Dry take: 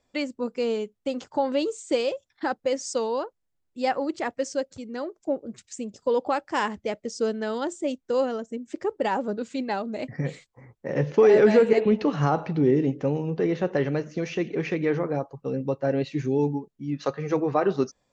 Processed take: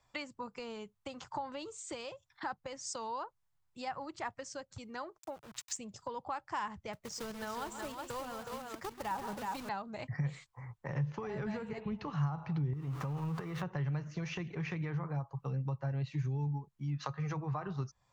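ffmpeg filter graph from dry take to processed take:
-filter_complex "[0:a]asettb=1/sr,asplit=3[s0][s1][s2];[s0]atrim=end=5.184[s3];[s1]atrim=start=5.18:end=5.77,asetpts=PTS-STARTPTS,afade=t=in:d=0.004:c=qsin,afade=t=out:st=0.586:d=0.004:c=qsin,tiltshelf=f=800:g=-8,aeval=exprs='val(0)*gte(abs(val(0)),0.00447)':c=same[s4];[s2]atrim=start=5.766[s5];[s3][s4]acrossfade=d=0.004:c1=hsin:c2=qsin[s6];[s6][s5]acrossfade=d=0.004:c1=qsin:c2=hsin,asettb=1/sr,asplit=3[s7][s8][s9];[s7]atrim=end=6.934[s10];[s8]atrim=start=6.93:end=9.69,asetpts=PTS-STARTPTS,afade=t=in:d=0.004:c=qsin,afade=t=out:st=2.756:d=0.004:c=qsin,acrusher=bits=3:mode=log:mix=0:aa=0.000001,aecho=1:1:130|177|368:0.2|0.133|0.422,atrim=end_sample=121716[s11];[s9]atrim=start=9.686[s12];[s10][s11]acrossfade=d=0.004:c1=hsin:c2=qsin[s13];[s13][s12]acrossfade=d=0.004:c1=qsin:c2=hsin,asettb=1/sr,asplit=3[s14][s15][s16];[s14]atrim=end=12.734[s17];[s15]atrim=start=12.73:end=13.63,asetpts=PTS-STARTPTS,afade=t=in:d=0.004:c=qsin,afade=t=out:st=0.896:d=0.004:c=qsin,aeval=exprs='val(0)+0.5*0.0119*sgn(val(0))':c=same,equalizer=f=1200:t=o:w=0.26:g=8,acompressor=threshold=0.0501:ratio=6:attack=3.2:release=140:knee=1:detection=peak[s18];[s16]atrim=start=13.626[s19];[s17][s18]acrossfade=d=0.004:c1=hsin:c2=qsin[s20];[s20][s19]acrossfade=d=0.004:c1=qsin:c2=hsin,acrossover=split=200[s21][s22];[s22]acompressor=threshold=0.0178:ratio=6[s23];[s21][s23]amix=inputs=2:normalize=0,equalizer=f=125:t=o:w=1:g=8,equalizer=f=250:t=o:w=1:g=-12,equalizer=f=500:t=o:w=1:g=-8,equalizer=f=1000:t=o:w=1:g=9,acompressor=threshold=0.0251:ratio=2.5,volume=0.891"

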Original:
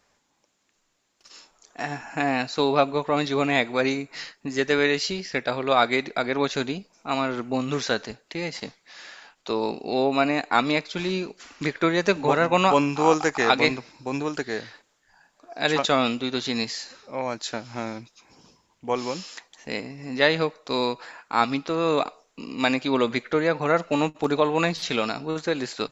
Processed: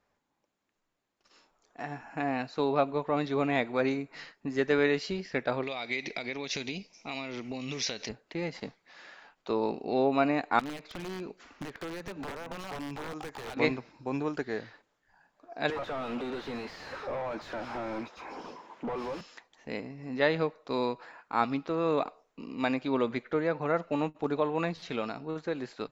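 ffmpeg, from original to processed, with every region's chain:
-filter_complex "[0:a]asettb=1/sr,asplit=3[s0][s1][s2];[s0]atrim=end=5.634[s3];[s1]atrim=start=5.63:end=8.09,asetpts=PTS-STARTPTS,afade=t=in:d=0.004:c=qsin,afade=t=out:st=2.456:d=0.004:c=qsin,acompressor=threshold=0.0316:ratio=5:attack=3.2:release=140:knee=1:detection=peak,lowpass=f=5700:t=q:w=4.7,highshelf=f=1800:t=q:w=3:g=6.5[s4];[s2]atrim=start=8.086[s5];[s3][s4]acrossfade=d=0.004:c1=hsin:c2=qsin[s6];[s6][s5]acrossfade=d=0.004:c1=qsin:c2=hsin,asettb=1/sr,asplit=3[s7][s8][s9];[s7]atrim=end=10.594[s10];[s8]atrim=start=10.59:end=13.57,asetpts=PTS-STARTPTS,afade=t=in:d=0.004:c=qsin,afade=t=out:st=2.976:d=0.004:c=qsin,acompressor=threshold=0.0355:ratio=5:attack=3.2:release=140:knee=1:detection=peak,aeval=exprs='(mod(18.8*val(0)+1,2)-1)/18.8':c=same[s11];[s9]atrim=start=13.566[s12];[s10][s11]acrossfade=d=0.004:c1=hsin:c2=qsin[s13];[s13][s12]acrossfade=d=0.004:c1=qsin:c2=hsin,asettb=1/sr,asplit=3[s14][s15][s16];[s14]atrim=end=15.704[s17];[s15]atrim=start=15.7:end=19.21,asetpts=PTS-STARTPTS,afade=t=in:d=0.004:c=qsin,afade=t=out:st=3.506:d=0.004:c=qsin,highpass=240,acompressor=threshold=0.0178:ratio=6:attack=3.2:release=140:knee=1:detection=peak,asplit=2[s18][s19];[s19]highpass=f=720:p=1,volume=56.2,asoftclip=type=tanh:threshold=0.0944[s20];[s18][s20]amix=inputs=2:normalize=0,lowpass=f=1300:p=1,volume=0.501[s21];[s16]atrim=start=19.206[s22];[s17][s21]acrossfade=d=0.004:c1=hsin:c2=qsin[s23];[s23][s22]acrossfade=d=0.004:c1=qsin:c2=hsin,dynaudnorm=f=520:g=13:m=3.76,lowpass=f=1600:p=1,volume=0.447"

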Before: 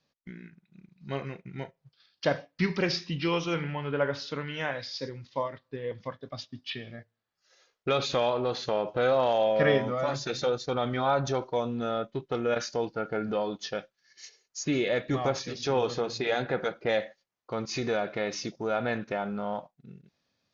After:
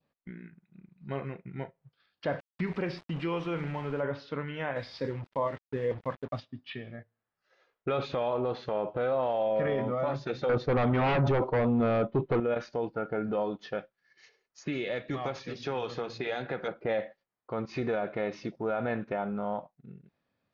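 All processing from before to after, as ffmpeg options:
-filter_complex "[0:a]asettb=1/sr,asplit=3[s0][s1][s2];[s0]atrim=end=2.394[s3];[s1]atrim=start=2.39:end=4.03,asetpts=PTS-STARTPTS,afade=t=in:d=0.004:c=qsin,afade=t=out:st=1.636:d=0.004:c=qsin,aeval=exprs='val(0)*gte(abs(val(0)),0.0133)':c=same,acompressor=threshold=0.0355:ratio=2:attack=3.2:release=140:knee=1:detection=peak[s4];[s2]atrim=start=4.026[s5];[s3][s4]acrossfade=d=0.004:c1=hsin:c2=qsin[s6];[s6][s5]acrossfade=d=0.004:c1=qsin:c2=hsin,asettb=1/sr,asplit=3[s7][s8][s9];[s7]atrim=end=4.764[s10];[s8]atrim=start=4.76:end=6.4,asetpts=PTS-STARTPTS,afade=t=in:d=0.004:c=qsin,afade=t=out:st=1.636:d=0.004:c=qsin,acontrast=25,acrusher=bits=6:mix=0:aa=0.5[s11];[s9]atrim=start=6.396[s12];[s10][s11]acrossfade=d=0.004:c1=hsin:c2=qsin[s13];[s13][s12]acrossfade=d=0.004:c1=qsin:c2=hsin,asettb=1/sr,asplit=3[s14][s15][s16];[s14]atrim=end=10.494[s17];[s15]atrim=start=10.49:end=12.4,asetpts=PTS-STARTPTS,afade=t=in:d=0.004:c=qsin,afade=t=out:st=1.906:d=0.004:c=qsin,lowpass=f=1800:p=1,aeval=exprs='0.158*sin(PI/2*3.16*val(0)/0.158)':c=same[s18];[s16]atrim=start=12.396[s19];[s17][s18]acrossfade=d=0.004:c1=hsin:c2=qsin[s20];[s20][s19]acrossfade=d=0.004:c1=qsin:c2=hsin,asettb=1/sr,asplit=3[s21][s22][s23];[s21]atrim=end=14.584[s24];[s22]atrim=start=14.58:end=16.68,asetpts=PTS-STARTPTS,afade=t=in:d=0.004:c=qsin,afade=t=out:st=2.096:d=0.004:c=qsin,aemphasis=mode=production:type=75kf,acrossover=split=98|1300|3200[s25][s26][s27][s28];[s25]acompressor=threshold=0.00178:ratio=3[s29];[s26]acompressor=threshold=0.0224:ratio=3[s30];[s27]acompressor=threshold=0.0141:ratio=3[s31];[s28]acompressor=threshold=0.0178:ratio=3[s32];[s29][s30][s31][s32]amix=inputs=4:normalize=0[s33];[s23]atrim=start=16.676[s34];[s24][s33]acrossfade=d=0.004:c1=hsin:c2=qsin[s35];[s35][s34]acrossfade=d=0.004:c1=qsin:c2=hsin,lowpass=2100,adynamicequalizer=threshold=0.00447:dfrequency=1600:dqfactor=2.2:tfrequency=1600:tqfactor=2.2:attack=5:release=100:ratio=0.375:range=2.5:mode=cutabove:tftype=bell,alimiter=limit=0.0891:level=0:latency=1:release=11"

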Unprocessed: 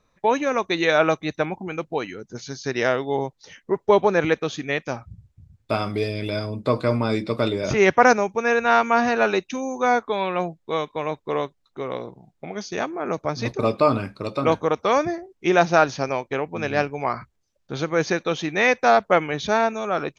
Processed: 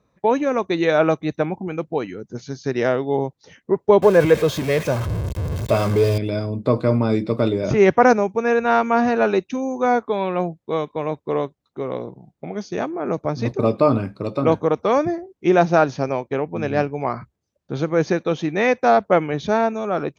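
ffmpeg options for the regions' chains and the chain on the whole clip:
-filter_complex "[0:a]asettb=1/sr,asplit=3[s0][s1][s2];[s0]atrim=end=4.024[s3];[s1]atrim=start=4.02:end=6.18,asetpts=PTS-STARTPTS,afade=t=in:d=0.004:c=qsin,afade=t=out:st=2.156:d=0.004:c=qsin,aeval=exprs='val(0)+0.5*0.0708*sgn(val(0))':c=same,aecho=1:1:1.9:0.48,atrim=end_sample=95256[s4];[s2]atrim=start=6.176[s5];[s3][s4]acrossfade=d=0.004:c1=hsin:c2=qsin[s6];[s6][s5]acrossfade=d=0.004:c1=qsin:c2=hsin,highpass=72,tiltshelf=f=900:g=5.5"

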